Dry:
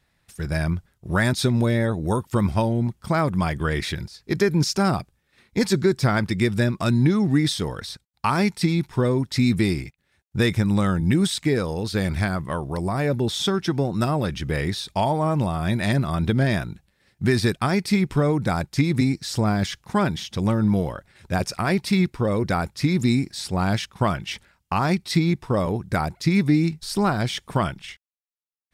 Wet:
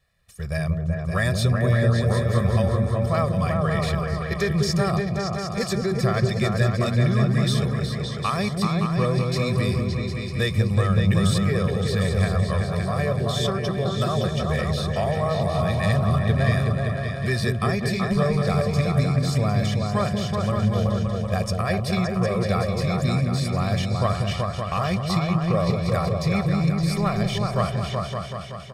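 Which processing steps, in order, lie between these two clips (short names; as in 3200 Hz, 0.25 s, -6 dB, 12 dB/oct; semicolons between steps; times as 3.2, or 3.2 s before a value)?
comb 1.7 ms, depth 91%; repeats that get brighter 0.189 s, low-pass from 400 Hz, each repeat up 2 oct, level 0 dB; gain -5.5 dB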